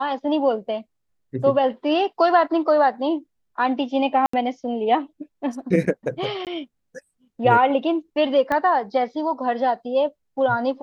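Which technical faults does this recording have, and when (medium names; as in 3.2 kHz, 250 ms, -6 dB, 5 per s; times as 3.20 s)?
4.26–4.33 s: dropout 74 ms
6.45–6.47 s: dropout 18 ms
8.52 s: pop -12 dBFS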